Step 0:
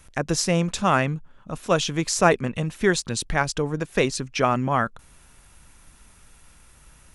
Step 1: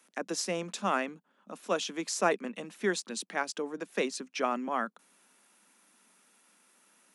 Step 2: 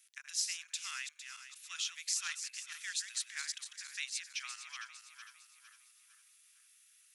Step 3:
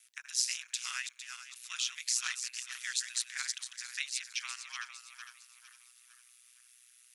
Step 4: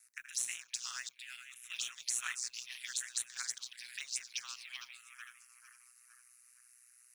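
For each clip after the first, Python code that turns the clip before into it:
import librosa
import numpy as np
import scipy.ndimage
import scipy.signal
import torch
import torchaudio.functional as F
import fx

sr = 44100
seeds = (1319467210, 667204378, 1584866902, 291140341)

y1 = scipy.signal.sosfilt(scipy.signal.butter(12, 190.0, 'highpass', fs=sr, output='sos'), x)
y1 = F.gain(torch.from_numpy(y1), -9.0).numpy()
y2 = fx.reverse_delay_fb(y1, sr, ms=228, feedback_pct=63, wet_db=-8)
y2 = scipy.signal.sosfilt(scipy.signal.bessel(6, 2900.0, 'highpass', norm='mag', fs=sr, output='sos'), y2)
y2 = F.gain(torch.from_numpy(y2), 1.0).numpy()
y3 = y2 * np.sin(2.0 * np.pi * 61.0 * np.arange(len(y2)) / sr)
y3 = F.gain(torch.from_numpy(y3), 6.5).numpy()
y4 = fx.mod_noise(y3, sr, seeds[0], snr_db=25)
y4 = fx.env_phaser(y4, sr, low_hz=530.0, high_hz=4900.0, full_db=-31.0)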